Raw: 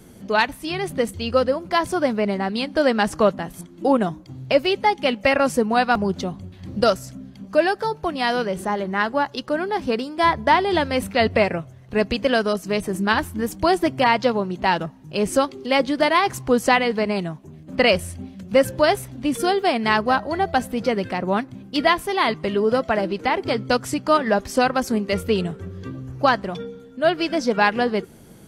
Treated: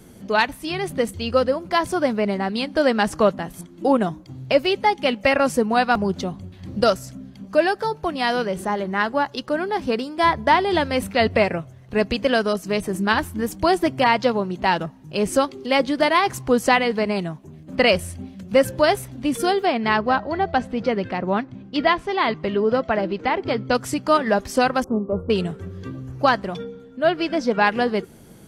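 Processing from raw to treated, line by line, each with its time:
19.65–23.75 s: distance through air 120 m
24.84–25.30 s: elliptic low-pass 1.2 kHz
26.64–27.67 s: treble shelf 6.5 kHz -11 dB

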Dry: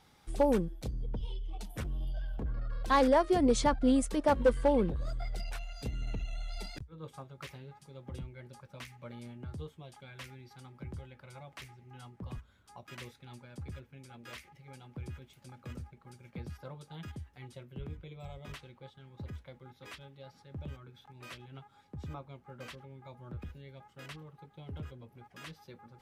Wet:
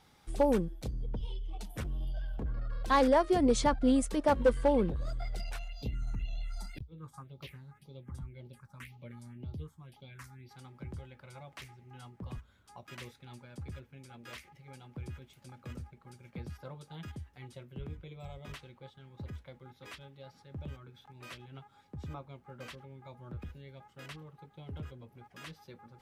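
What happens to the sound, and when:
5.68–10.49 s: phase shifter stages 4, 1.9 Hz, lowest notch 430–1700 Hz

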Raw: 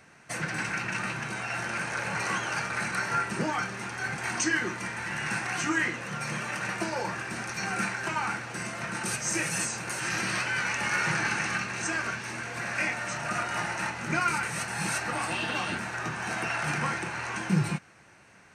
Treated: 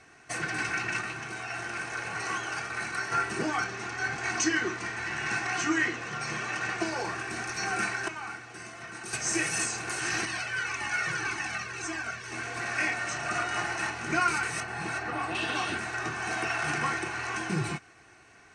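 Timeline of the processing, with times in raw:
1.01–3.12 s: gain -3.5 dB
3.64–6.86 s: low-pass 7.9 kHz 24 dB/octave
8.08–9.13 s: gain -8 dB
10.25–12.32 s: Shepard-style flanger falling 1.8 Hz
12.98–13.61 s: steep low-pass 9.8 kHz
14.60–15.35 s: low-pass 1.7 kHz 6 dB/octave
whole clip: Chebyshev low-pass 7.9 kHz, order 2; comb 2.7 ms, depth 57%

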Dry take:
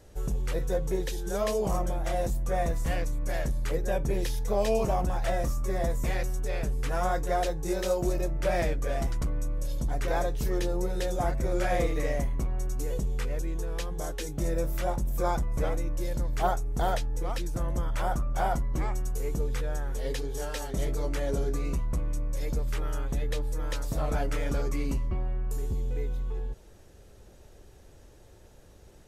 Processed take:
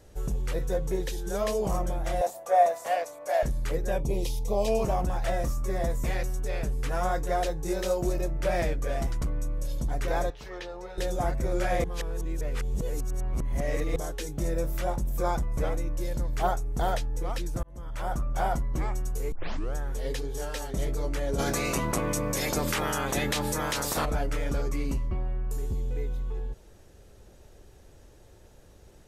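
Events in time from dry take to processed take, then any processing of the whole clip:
2.21–3.43 s: resonant high-pass 660 Hz, resonance Q 4.6
4.00–4.68 s: Butterworth band-stop 1.6 kHz, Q 1.3
10.30–10.98 s: three-band isolator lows -17 dB, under 560 Hz, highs -22 dB, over 4.8 kHz
11.84–13.96 s: reverse
17.63–18.23 s: fade in
19.32 s: tape start 0.43 s
21.38–24.04 s: spectral peaks clipped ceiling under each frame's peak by 29 dB

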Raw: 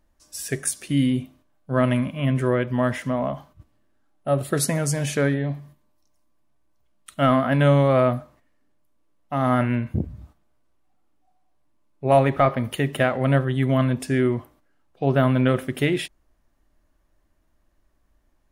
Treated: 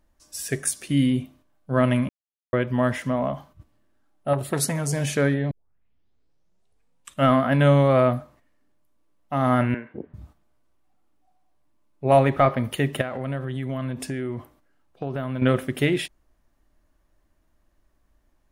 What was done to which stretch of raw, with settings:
2.09–2.53 s: mute
4.33–4.93 s: transformer saturation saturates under 640 Hz
5.51 s: tape start 1.75 s
9.74–10.14 s: cabinet simulation 420–2600 Hz, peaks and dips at 420 Hz +6 dB, 650 Hz -5 dB, 1.1 kHz -4 dB, 1.7 kHz +4 dB, 2.5 kHz -4 dB
13.01–15.42 s: compression, threshold -25 dBFS

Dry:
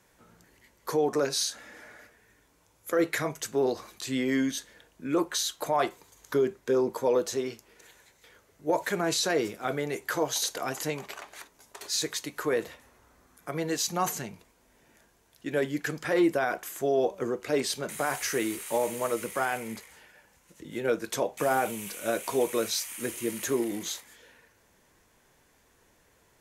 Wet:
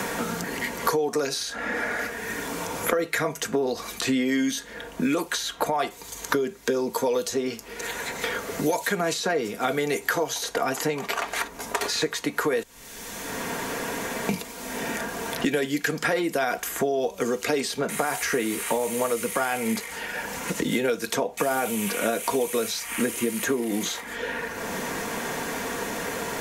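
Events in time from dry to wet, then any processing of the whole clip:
12.63–14.29 s: room tone
whole clip: compression 2:1, threshold -36 dBFS; comb 4.3 ms, depth 41%; three bands compressed up and down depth 100%; trim +9 dB

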